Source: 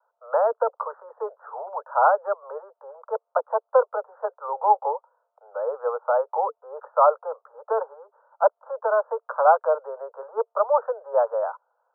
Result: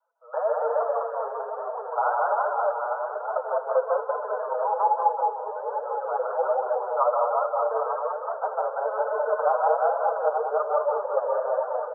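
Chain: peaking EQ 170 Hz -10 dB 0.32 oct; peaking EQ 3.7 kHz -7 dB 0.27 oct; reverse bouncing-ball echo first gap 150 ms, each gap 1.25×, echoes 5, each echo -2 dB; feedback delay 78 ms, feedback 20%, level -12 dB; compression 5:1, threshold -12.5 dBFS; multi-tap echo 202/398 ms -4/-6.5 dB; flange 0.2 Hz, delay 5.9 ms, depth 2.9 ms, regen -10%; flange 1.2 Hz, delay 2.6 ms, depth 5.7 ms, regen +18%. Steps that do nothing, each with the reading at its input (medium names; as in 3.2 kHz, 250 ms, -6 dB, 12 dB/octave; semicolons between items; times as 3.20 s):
peaking EQ 170 Hz: input has nothing below 380 Hz; peaking EQ 3.7 kHz: input has nothing above 1.6 kHz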